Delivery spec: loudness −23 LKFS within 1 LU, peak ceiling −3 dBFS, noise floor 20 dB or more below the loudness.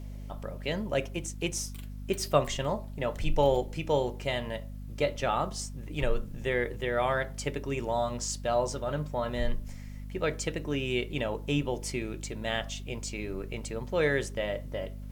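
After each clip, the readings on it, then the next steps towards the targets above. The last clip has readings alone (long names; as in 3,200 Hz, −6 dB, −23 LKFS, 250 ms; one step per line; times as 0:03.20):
mains hum 50 Hz; hum harmonics up to 250 Hz; level of the hum −38 dBFS; integrated loudness −31.5 LKFS; sample peak −9.5 dBFS; target loudness −23.0 LKFS
→ hum removal 50 Hz, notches 5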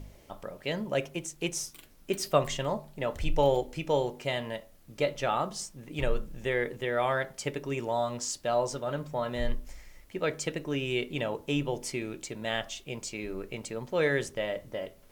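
mains hum none found; integrated loudness −32.0 LKFS; sample peak −9.5 dBFS; target loudness −23.0 LKFS
→ level +9 dB
brickwall limiter −3 dBFS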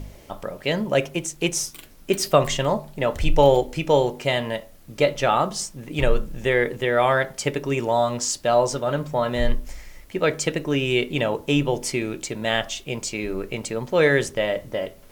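integrated loudness −23.0 LKFS; sample peak −3.0 dBFS; background noise floor −47 dBFS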